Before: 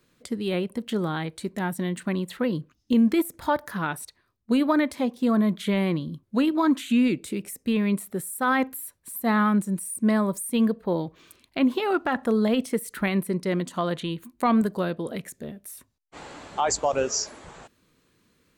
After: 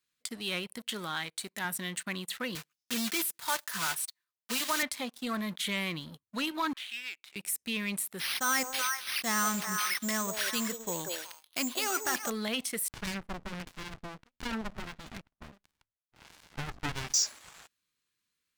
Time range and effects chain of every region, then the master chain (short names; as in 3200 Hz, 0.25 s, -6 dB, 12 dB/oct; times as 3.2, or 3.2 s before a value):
0.91–1.65 HPF 180 Hz 6 dB/oct + short-mantissa float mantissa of 6-bit
2.55–4.83 block floating point 3-bit + HPF 140 Hz + notch comb 280 Hz
6.73–7.36 HPF 1300 Hz + air absorption 250 m + core saturation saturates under 1400 Hz
8.19–12.3 delay with a stepping band-pass 0.187 s, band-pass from 500 Hz, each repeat 1.4 oct, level -2 dB + careless resampling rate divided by 6×, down none, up hold
12.88–17.14 high shelf 3500 Hz +5 dB + LFO low-pass sine 1.5 Hz 410–3500 Hz + running maximum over 65 samples
whole clip: passive tone stack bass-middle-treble 5-5-5; sample leveller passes 3; low shelf 390 Hz -9 dB